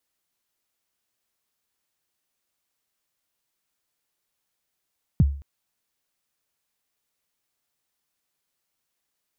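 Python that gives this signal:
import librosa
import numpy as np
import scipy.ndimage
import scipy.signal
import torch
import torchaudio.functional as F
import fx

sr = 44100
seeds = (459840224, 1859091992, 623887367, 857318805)

y = fx.drum_kick(sr, seeds[0], length_s=0.22, level_db=-10.5, start_hz=200.0, end_hz=70.0, sweep_ms=32.0, decay_s=0.44, click=False)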